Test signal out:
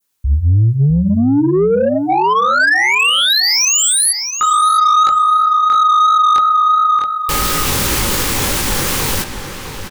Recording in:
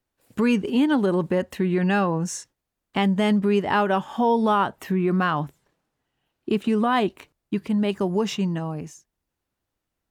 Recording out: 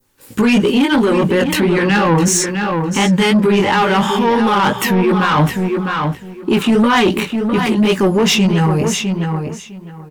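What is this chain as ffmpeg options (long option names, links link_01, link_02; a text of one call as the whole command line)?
ffmpeg -i in.wav -filter_complex "[0:a]asuperstop=centerf=670:order=20:qfactor=5,bandreject=frequency=60:width_type=h:width=6,bandreject=frequency=120:width_type=h:width=6,bandreject=frequency=180:width_type=h:width=6,adynamicequalizer=threshold=0.0178:dfrequency=2400:dqfactor=0.73:tfrequency=2400:tqfactor=0.73:attack=5:release=100:ratio=0.375:range=2.5:mode=boostabove:tftype=bell,dynaudnorm=framelen=130:gausssize=31:maxgain=4dB,highshelf=frequency=5100:gain=6,areverse,acompressor=threshold=-23dB:ratio=6,areverse,flanger=delay=17:depth=4.8:speed=2.9,asoftclip=type=tanh:threshold=-27dB,asplit=2[link_01][link_02];[link_02]adelay=656,lowpass=frequency=4100:poles=1,volume=-8dB,asplit=2[link_03][link_04];[link_04]adelay=656,lowpass=frequency=4100:poles=1,volume=0.19,asplit=2[link_05][link_06];[link_06]adelay=656,lowpass=frequency=4100:poles=1,volume=0.19[link_07];[link_03][link_05][link_07]amix=inputs=3:normalize=0[link_08];[link_01][link_08]amix=inputs=2:normalize=0,alimiter=level_in=28.5dB:limit=-1dB:release=50:level=0:latency=1,volume=-6.5dB" out.wav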